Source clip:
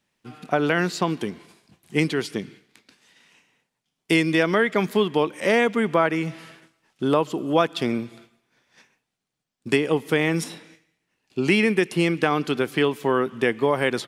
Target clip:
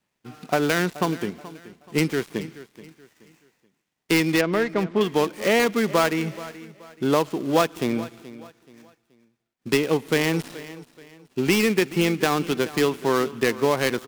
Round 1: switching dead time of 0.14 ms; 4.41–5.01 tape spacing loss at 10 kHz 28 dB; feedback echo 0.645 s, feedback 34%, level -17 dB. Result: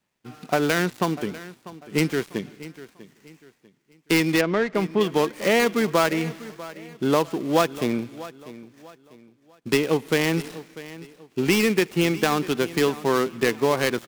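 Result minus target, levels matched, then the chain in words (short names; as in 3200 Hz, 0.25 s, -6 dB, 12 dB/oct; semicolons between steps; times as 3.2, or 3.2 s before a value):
echo 0.217 s late
switching dead time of 0.14 ms; 4.41–5.01 tape spacing loss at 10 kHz 28 dB; feedback echo 0.428 s, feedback 34%, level -17 dB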